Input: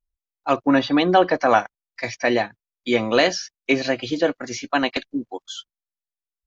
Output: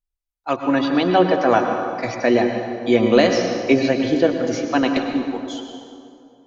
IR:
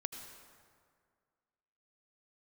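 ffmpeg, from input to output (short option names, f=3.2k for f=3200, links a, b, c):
-filter_complex "[0:a]acrossover=split=560[a][b];[a]dynaudnorm=f=220:g=13:m=10.5dB[c];[c][b]amix=inputs=2:normalize=0[d];[1:a]atrim=start_sample=2205,asetrate=34398,aresample=44100[e];[d][e]afir=irnorm=-1:irlink=0,volume=-1.5dB"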